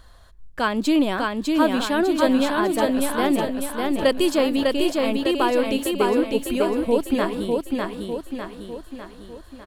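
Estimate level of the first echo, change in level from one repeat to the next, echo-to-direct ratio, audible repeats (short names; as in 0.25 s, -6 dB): -3.0 dB, -6.0 dB, -1.5 dB, 6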